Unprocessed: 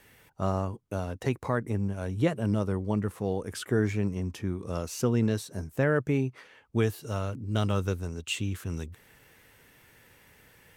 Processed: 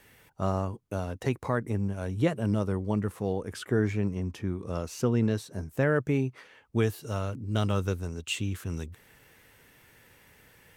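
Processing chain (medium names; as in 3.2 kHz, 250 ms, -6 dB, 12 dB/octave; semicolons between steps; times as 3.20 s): 3.32–5.68 s: treble shelf 5 kHz -6 dB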